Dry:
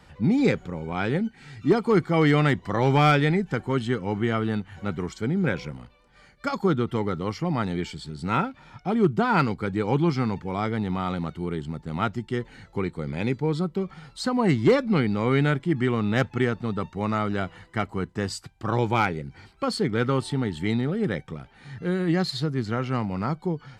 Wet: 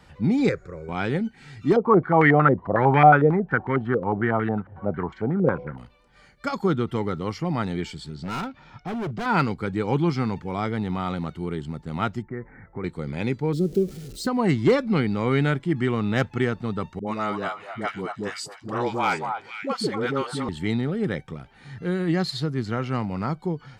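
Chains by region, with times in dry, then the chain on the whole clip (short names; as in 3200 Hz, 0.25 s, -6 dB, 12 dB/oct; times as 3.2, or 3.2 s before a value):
0.49–0.89 LPF 7900 Hz + fixed phaser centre 840 Hz, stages 6
1.76–5.78 HPF 44 Hz + stepped low-pass 11 Hz 520–1900 Hz
8.15–9.26 LPF 6500 Hz 24 dB/oct + hard clip -27 dBFS
12.22–12.84 block floating point 7-bit + steep low-pass 2200 Hz 96 dB/oct + compressor 2:1, threshold -31 dBFS
13.53–14.27 zero-crossing step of -35 dBFS + EQ curve 150 Hz 0 dB, 410 Hz +7 dB, 940 Hz -22 dB, 6000 Hz -1 dB
16.99–20.49 Bessel high-pass 220 Hz + dispersion highs, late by 80 ms, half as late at 480 Hz + delay with a stepping band-pass 0.241 s, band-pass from 880 Hz, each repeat 1.4 oct, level -3 dB
whole clip: dry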